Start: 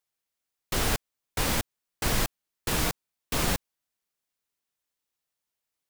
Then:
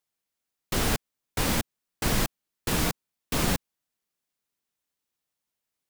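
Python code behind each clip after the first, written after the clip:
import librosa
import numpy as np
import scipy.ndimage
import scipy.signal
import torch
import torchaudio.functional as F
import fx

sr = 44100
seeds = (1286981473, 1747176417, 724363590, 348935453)

y = fx.peak_eq(x, sr, hz=210.0, db=4.5, octaves=1.5)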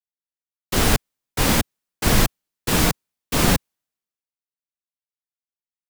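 y = fx.band_widen(x, sr, depth_pct=70)
y = y * 10.0 ** (7.5 / 20.0)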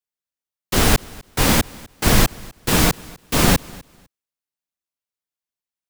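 y = fx.echo_feedback(x, sr, ms=251, feedback_pct=20, wet_db=-23.0)
y = y * 10.0 ** (2.5 / 20.0)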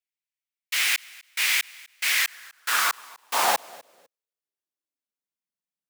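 y = fx.filter_sweep_highpass(x, sr, from_hz=2200.0, to_hz=170.0, start_s=2.09, end_s=5.62, q=3.1)
y = y * 10.0 ** (-6.0 / 20.0)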